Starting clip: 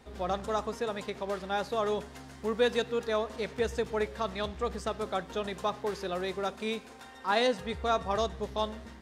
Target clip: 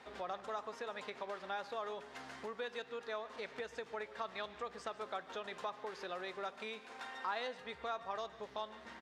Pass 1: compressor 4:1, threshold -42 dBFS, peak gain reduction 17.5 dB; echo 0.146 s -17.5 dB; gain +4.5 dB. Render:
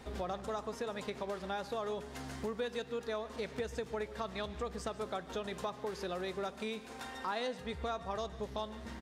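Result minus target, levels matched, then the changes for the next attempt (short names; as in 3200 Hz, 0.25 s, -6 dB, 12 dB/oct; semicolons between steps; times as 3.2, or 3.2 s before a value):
2000 Hz band -3.5 dB
add after compressor: band-pass 1600 Hz, Q 0.55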